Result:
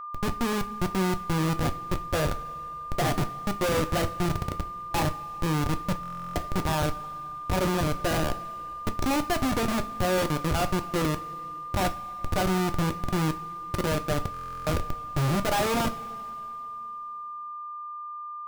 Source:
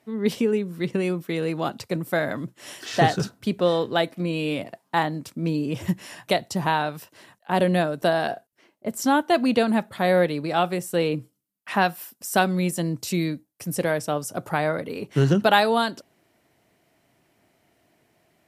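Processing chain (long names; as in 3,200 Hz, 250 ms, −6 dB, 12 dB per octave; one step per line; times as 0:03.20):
comparator with hysteresis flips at −21.5 dBFS
steady tone 1,200 Hz −36 dBFS
coupled-rooms reverb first 0.29 s, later 3 s, from −18 dB, DRR 7 dB
buffer that repeats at 0:06.01/0:14.32, samples 1,024, times 14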